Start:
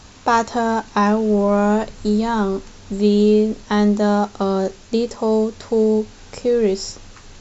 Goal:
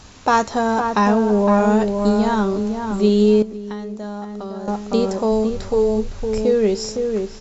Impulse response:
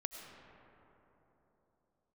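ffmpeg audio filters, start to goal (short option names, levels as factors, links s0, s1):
-filter_complex "[0:a]asplit=2[s0][s1];[s1]adelay=511,lowpass=f=1300:p=1,volume=0.596,asplit=2[s2][s3];[s3]adelay=511,lowpass=f=1300:p=1,volume=0.23,asplit=2[s4][s5];[s5]adelay=511,lowpass=f=1300:p=1,volume=0.23[s6];[s0][s2][s4][s6]amix=inputs=4:normalize=0,asettb=1/sr,asplit=3[s7][s8][s9];[s7]atrim=end=3.424[s10];[s8]atrim=start=3.42:end=4.68,asetpts=PTS-STARTPTS,afade=t=in:d=0.004:c=qsin,afade=t=out:st=1.256:d=0.004:c=qsin,acompressor=threshold=0.0398:ratio=6[s11];[s9]atrim=start=4.676[s12];[s10][s11]acrossfade=d=0.004:c1=hsin:c2=qsin[s13];[s13][s12]acrossfade=d=0.004:c1=qsin:c2=hsin,asplit=3[s14][s15][s16];[s14]afade=t=out:st=5.31:d=0.02[s17];[s15]asubboost=boost=5:cutoff=110,afade=t=in:st=5.31:d=0.02,afade=t=out:st=6.43:d=0.02[s18];[s16]afade=t=in:st=6.43:d=0.02[s19];[s17][s18][s19]amix=inputs=3:normalize=0"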